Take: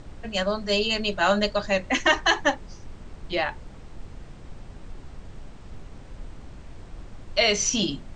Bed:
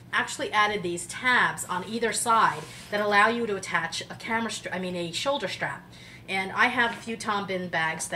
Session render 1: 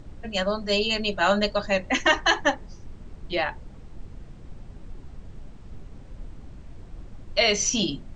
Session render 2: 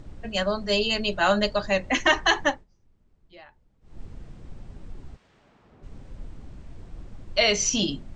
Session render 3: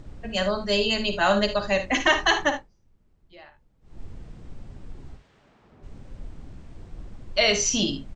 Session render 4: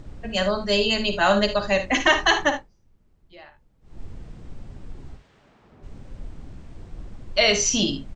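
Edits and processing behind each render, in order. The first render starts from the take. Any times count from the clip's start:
broadband denoise 6 dB, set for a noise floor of −44 dBFS
0:02.45–0:04.01: duck −22.5 dB, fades 0.20 s; 0:05.15–0:05.82: resonant band-pass 3,100 Hz → 740 Hz, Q 0.55
ambience of single reflections 54 ms −10 dB, 76 ms −14 dB
level +2 dB

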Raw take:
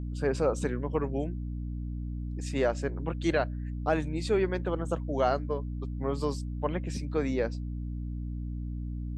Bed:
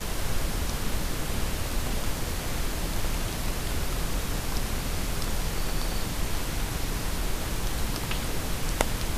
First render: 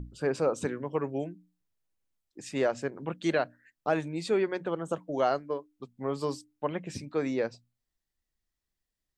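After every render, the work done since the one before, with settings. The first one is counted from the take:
mains-hum notches 60/120/180/240/300 Hz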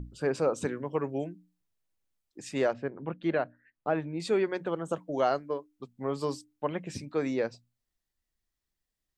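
0:02.73–0:04.20: high-frequency loss of the air 380 metres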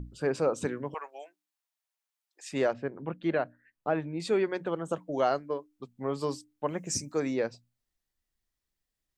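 0:00.94–0:02.52: high-pass filter 700 Hz 24 dB per octave
0:06.68–0:07.20: high shelf with overshoot 4,700 Hz +10.5 dB, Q 3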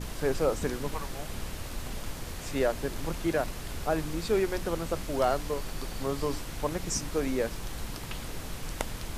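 mix in bed −8 dB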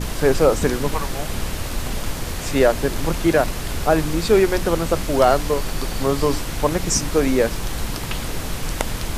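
level +11.5 dB
brickwall limiter −3 dBFS, peak gain reduction 2.5 dB

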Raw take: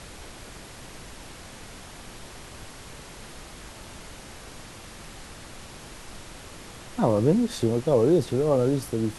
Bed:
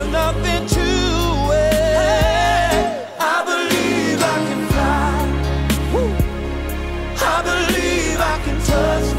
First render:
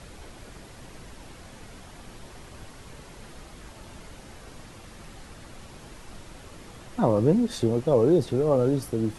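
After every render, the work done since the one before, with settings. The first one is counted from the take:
broadband denoise 6 dB, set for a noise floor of −44 dBFS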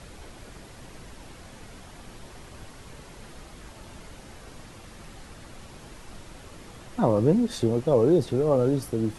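no processing that can be heard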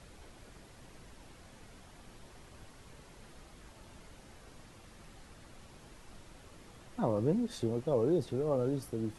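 level −9.5 dB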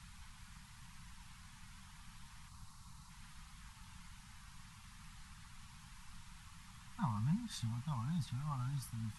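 Chebyshev band-stop filter 190–950 Hz, order 3
0:02.48–0:03.10: gain on a spectral selection 1,400–3,600 Hz −7 dB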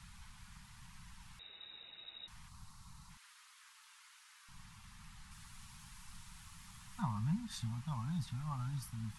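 0:01.39–0:02.28: voice inversion scrambler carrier 3,800 Hz
0:03.17–0:04.49: high-pass filter 1,100 Hz 24 dB per octave
0:05.31–0:07.02: high-shelf EQ 5,400 Hz +7 dB

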